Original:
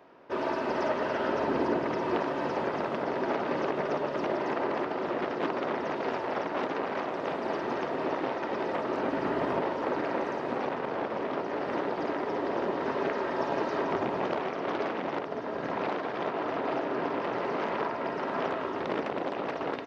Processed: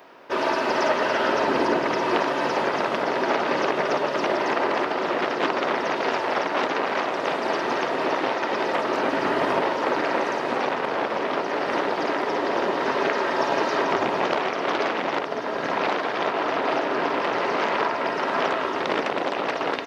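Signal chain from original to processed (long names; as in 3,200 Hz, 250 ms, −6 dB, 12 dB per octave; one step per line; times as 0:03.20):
spectral tilt +2.5 dB per octave
level +8.5 dB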